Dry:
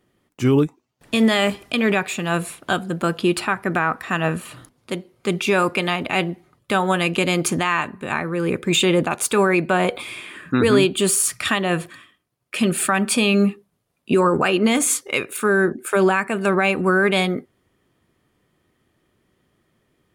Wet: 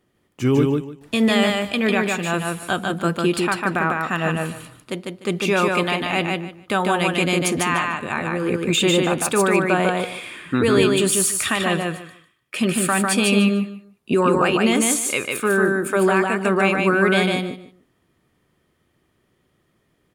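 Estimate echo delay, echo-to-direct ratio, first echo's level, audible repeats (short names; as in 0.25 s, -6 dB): 0.149 s, -3.0 dB, -3.0 dB, 3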